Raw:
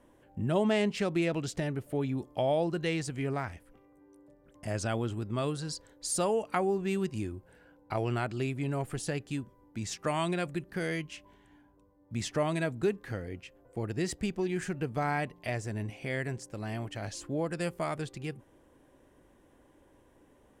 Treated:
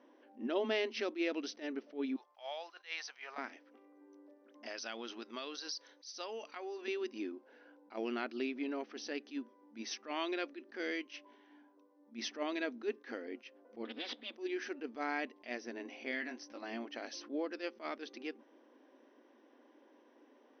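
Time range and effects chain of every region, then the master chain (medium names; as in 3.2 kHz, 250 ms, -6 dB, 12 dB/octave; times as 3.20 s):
2.16–3.38 s: block-companded coder 7-bit + high-pass 790 Hz 24 dB/octave + tape noise reduction on one side only decoder only
4.66–6.88 s: tilt EQ +4 dB/octave + compression 3:1, threshold -37 dBFS
13.85–14.36 s: comb filter that takes the minimum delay 4 ms + resonant low-pass 3.5 kHz, resonance Q 8.1 + compression, threshold -35 dBFS
16.11–16.63 s: peaking EQ 420 Hz -15 dB 0.27 oct + upward compressor, threshold -44 dBFS + doubling 20 ms -7 dB
whole clip: FFT band-pass 220–6200 Hz; dynamic bell 790 Hz, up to -7 dB, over -43 dBFS, Q 0.74; attacks held to a fixed rise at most 250 dB/s; trim -1 dB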